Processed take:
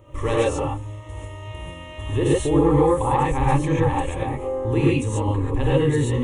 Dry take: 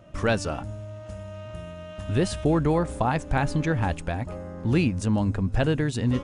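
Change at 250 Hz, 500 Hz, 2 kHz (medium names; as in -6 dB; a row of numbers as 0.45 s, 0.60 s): +3.0 dB, +7.0 dB, 0.0 dB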